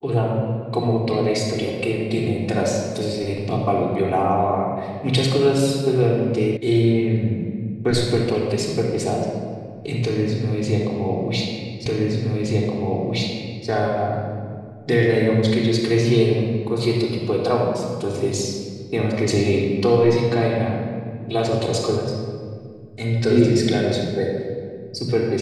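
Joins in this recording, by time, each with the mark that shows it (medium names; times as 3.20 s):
6.57 s: sound stops dead
11.86 s: repeat of the last 1.82 s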